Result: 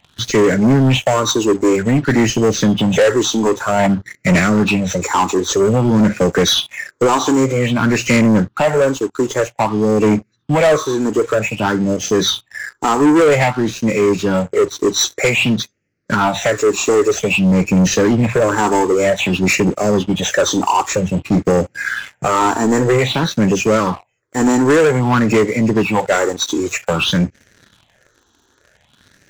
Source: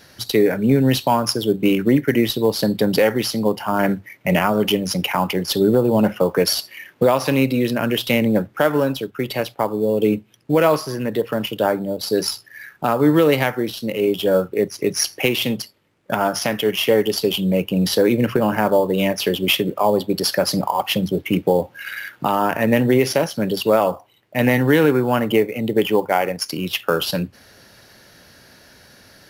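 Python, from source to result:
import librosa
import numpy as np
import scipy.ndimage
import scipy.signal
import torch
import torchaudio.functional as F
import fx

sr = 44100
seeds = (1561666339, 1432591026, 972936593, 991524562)

y = fx.freq_compress(x, sr, knee_hz=1900.0, ratio=1.5)
y = fx.phaser_stages(y, sr, stages=6, low_hz=150.0, high_hz=1000.0, hz=0.52, feedback_pct=15)
y = fx.leveller(y, sr, passes=3)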